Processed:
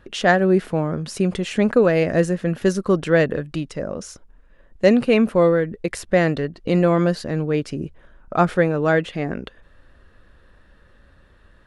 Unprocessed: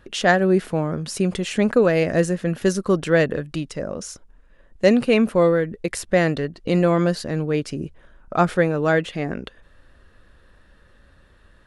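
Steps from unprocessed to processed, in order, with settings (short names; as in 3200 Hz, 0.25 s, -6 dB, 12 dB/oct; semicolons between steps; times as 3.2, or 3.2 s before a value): high shelf 4500 Hz -6 dB; gain +1 dB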